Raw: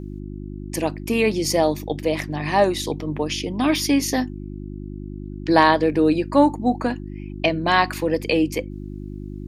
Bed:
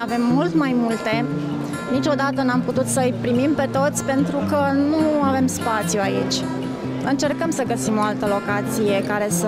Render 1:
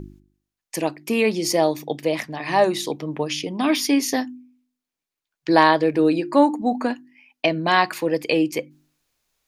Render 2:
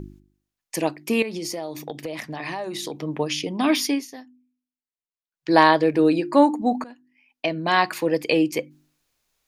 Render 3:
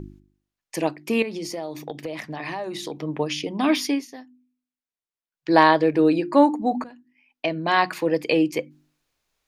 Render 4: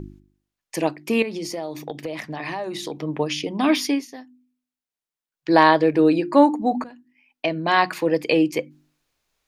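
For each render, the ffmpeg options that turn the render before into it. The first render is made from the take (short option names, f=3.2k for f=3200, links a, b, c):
-af "bandreject=f=50:t=h:w=4,bandreject=f=100:t=h:w=4,bandreject=f=150:t=h:w=4,bandreject=f=200:t=h:w=4,bandreject=f=250:t=h:w=4,bandreject=f=300:t=h:w=4,bandreject=f=350:t=h:w=4"
-filter_complex "[0:a]asettb=1/sr,asplit=3[a][b][c];[a]atrim=end=1.224[d];[b]atrim=start=1.22:end=2.97,asetpts=PTS-STARTPTS,afade=t=in:d=0.004:c=qsin,afade=t=out:st=1.746:d=0.004:c=qsin,acompressor=threshold=-26dB:ratio=12:attack=3.2:release=140:knee=1:detection=peak[e];[c]atrim=start=2.966[f];[d][e]acrossfade=d=0.004:c1=hsin:c2=qsin[g];[g][f]acrossfade=d=0.004:c1=qsin:c2=hsin,asplit=4[h][i][j][k];[h]atrim=end=4.07,asetpts=PTS-STARTPTS,afade=t=out:st=3.81:d=0.26:silence=0.133352[l];[i]atrim=start=4.07:end=5.31,asetpts=PTS-STARTPTS,volume=-17.5dB[m];[j]atrim=start=5.31:end=6.84,asetpts=PTS-STARTPTS,afade=t=in:d=0.26:silence=0.133352,afade=t=out:st=1.526:d=0.004:c=hsin:silence=0.0707946[n];[k]atrim=start=6.84,asetpts=PTS-STARTPTS,afade=t=in:d=1.14:silence=0.0707946[o];[l][m][n][o]concat=n=4:v=0:a=1"
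-af "highshelf=f=6k:g=-7.5,bandreject=f=60:t=h:w=6,bandreject=f=120:t=h:w=6,bandreject=f=180:t=h:w=6,bandreject=f=240:t=h:w=6"
-af "volume=1.5dB,alimiter=limit=-2dB:level=0:latency=1"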